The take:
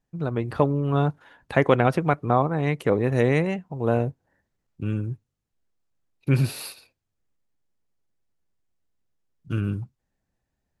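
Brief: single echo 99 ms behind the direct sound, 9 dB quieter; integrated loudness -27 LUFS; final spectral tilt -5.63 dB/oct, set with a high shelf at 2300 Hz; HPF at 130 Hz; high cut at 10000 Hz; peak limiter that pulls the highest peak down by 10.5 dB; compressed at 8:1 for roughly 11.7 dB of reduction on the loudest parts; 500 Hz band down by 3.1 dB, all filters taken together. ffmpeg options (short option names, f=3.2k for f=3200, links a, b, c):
-af "highpass=130,lowpass=10k,equalizer=f=500:t=o:g=-4,highshelf=f=2.3k:g=5,acompressor=threshold=-27dB:ratio=8,alimiter=limit=-21.5dB:level=0:latency=1,aecho=1:1:99:0.355,volume=7.5dB"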